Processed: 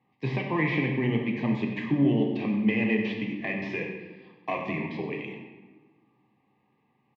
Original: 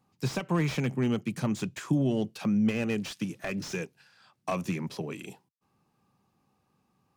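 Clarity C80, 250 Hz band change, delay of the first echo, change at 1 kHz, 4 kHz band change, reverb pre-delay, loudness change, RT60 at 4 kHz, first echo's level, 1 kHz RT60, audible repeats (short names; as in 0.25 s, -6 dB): 6.0 dB, +2.5 dB, 93 ms, +3.0 dB, -1.0 dB, 6 ms, +2.5 dB, 0.90 s, -11.5 dB, 1.2 s, 1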